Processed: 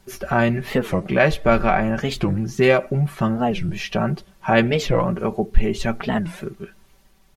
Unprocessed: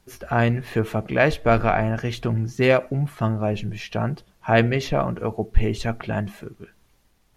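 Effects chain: comb 5.2 ms; in parallel at +1 dB: compressor, threshold -24 dBFS, peak gain reduction 17.5 dB; on the sum: record warp 45 rpm, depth 250 cents; gain -2 dB

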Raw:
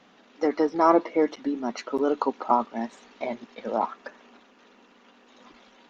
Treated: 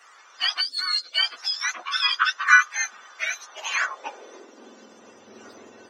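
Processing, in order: spectrum mirrored in octaves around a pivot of 1200 Hz; in parallel at -1 dB: compressor, threshold -36 dBFS, peak gain reduction 17 dB; on the sum: high-pass sweep 1300 Hz -> 110 Hz, 3.34–5.29; spectral gain 0.61–1.13, 590–3400 Hz -20 dB; gain +2.5 dB

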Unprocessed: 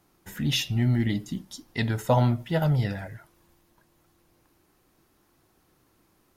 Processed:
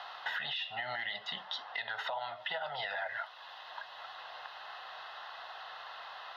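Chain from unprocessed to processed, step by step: elliptic band-pass 690–3800 Hz, stop band 40 dB; compressor 6:1, threshold -44 dBFS, peak gain reduction 20 dB; limiter -41.5 dBFS, peak gain reduction 12 dB; Butterworth band-stop 2300 Hz, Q 5.6; three-band squash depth 70%; gain +15 dB

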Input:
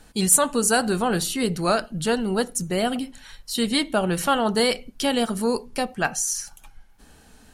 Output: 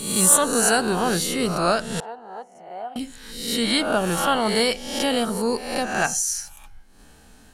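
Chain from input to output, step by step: spectral swells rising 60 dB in 0.79 s; 2–2.96 band-pass 810 Hz, Q 5.6; gain -1.5 dB

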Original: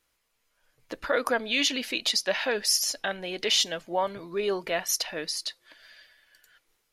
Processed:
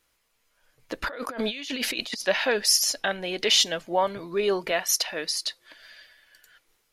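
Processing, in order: 1.02–2.26 negative-ratio compressor -36 dBFS, ratio -1; 4.71–5.45 low shelf 250 Hz -8.5 dB; gain +3.5 dB

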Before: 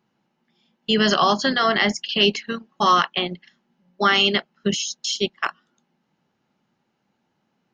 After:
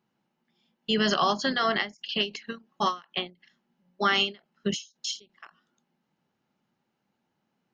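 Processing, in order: ending taper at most 220 dB/s; gain -6 dB

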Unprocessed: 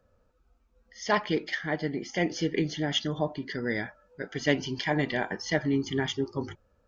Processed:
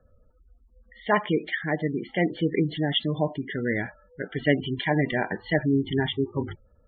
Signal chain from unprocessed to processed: steep low-pass 4000 Hz 96 dB/oct; spectral gate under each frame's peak -20 dB strong; low shelf 90 Hz +8.5 dB; gain +3 dB

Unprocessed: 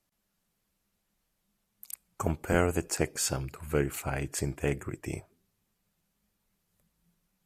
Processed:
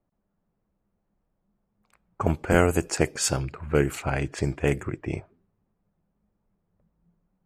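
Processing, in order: low-pass opened by the level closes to 860 Hz, open at -25 dBFS; gain +6 dB

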